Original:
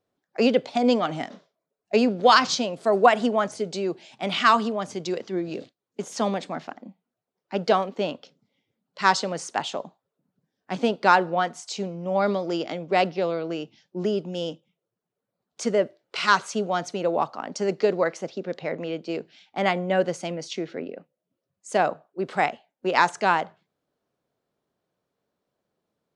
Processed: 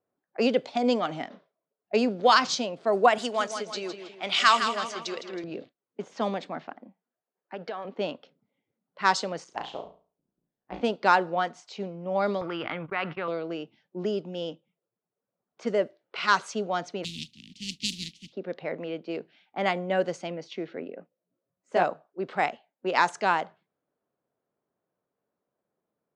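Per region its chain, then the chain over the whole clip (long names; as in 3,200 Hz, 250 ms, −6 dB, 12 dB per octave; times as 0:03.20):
0:03.18–0:05.44: spectral tilt +3.5 dB per octave + repeating echo 161 ms, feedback 46%, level −8.5 dB
0:06.85–0:07.85: high-pass filter 290 Hz 6 dB per octave + parametric band 1,700 Hz +6.5 dB 0.21 octaves + downward compressor 8 to 1, threshold −27 dBFS
0:09.44–0:10.81: parametric band 1,500 Hz −5.5 dB 1.1 octaves + amplitude modulation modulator 130 Hz, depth 90% + flutter between parallel walls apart 6 metres, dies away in 0.38 s
0:12.41–0:13.28: noise gate −38 dBFS, range −29 dB + drawn EQ curve 110 Hz 0 dB, 180 Hz −10 dB, 660 Hz −15 dB, 1,200 Hz +4 dB, 2,600 Hz −4 dB, 7,100 Hz −28 dB, 11,000 Hz +8 dB + envelope flattener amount 70%
0:17.03–0:18.32: compressing power law on the bin magnitudes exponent 0.33 + elliptic band-stop filter 220–3,000 Hz, stop band 70 dB + parametric band 1,500 Hz −14 dB 0.45 octaves
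0:20.95–0:21.84: parametric band 4,300 Hz −3.5 dB 1.5 octaves + double-tracking delay 17 ms −3 dB
whole clip: low-pass that shuts in the quiet parts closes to 1,800 Hz, open at −17 dBFS; low-shelf EQ 100 Hz −10 dB; level −3 dB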